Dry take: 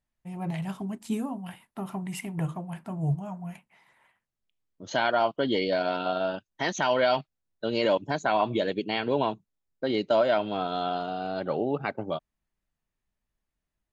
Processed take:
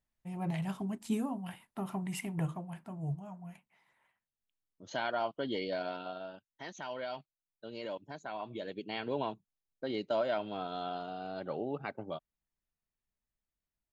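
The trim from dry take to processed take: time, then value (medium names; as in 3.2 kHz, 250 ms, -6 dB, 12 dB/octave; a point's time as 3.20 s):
2.32 s -3 dB
3.00 s -9.5 dB
5.83 s -9.5 dB
6.30 s -16.5 dB
8.42 s -16.5 dB
9.00 s -9 dB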